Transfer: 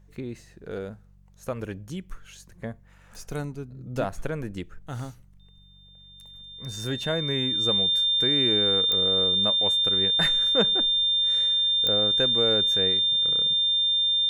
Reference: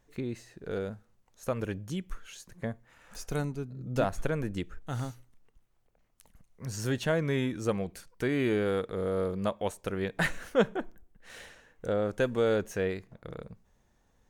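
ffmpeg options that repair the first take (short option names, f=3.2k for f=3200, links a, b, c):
-af "adeclick=t=4,bandreject=f=47.7:t=h:w=4,bandreject=f=95.4:t=h:w=4,bandreject=f=143.1:t=h:w=4,bandreject=f=190.8:t=h:w=4,bandreject=f=3.6k:w=30"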